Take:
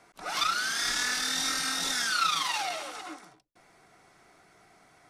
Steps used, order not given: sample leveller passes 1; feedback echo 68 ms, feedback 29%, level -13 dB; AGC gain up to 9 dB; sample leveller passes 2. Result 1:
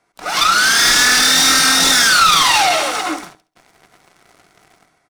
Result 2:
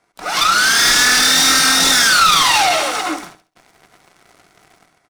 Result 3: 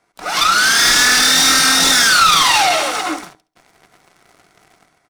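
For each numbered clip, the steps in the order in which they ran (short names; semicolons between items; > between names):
AGC > second sample leveller > feedback echo > first sample leveller; first sample leveller > AGC > second sample leveller > feedback echo; first sample leveller > AGC > feedback echo > second sample leveller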